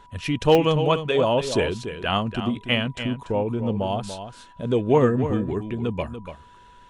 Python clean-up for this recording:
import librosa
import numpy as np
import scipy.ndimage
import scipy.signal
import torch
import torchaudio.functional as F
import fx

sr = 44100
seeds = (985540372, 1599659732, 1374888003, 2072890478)

y = fx.fix_declip(x, sr, threshold_db=-7.0)
y = fx.fix_declick_ar(y, sr, threshold=10.0)
y = fx.notch(y, sr, hz=980.0, q=30.0)
y = fx.fix_echo_inverse(y, sr, delay_ms=289, level_db=-10.0)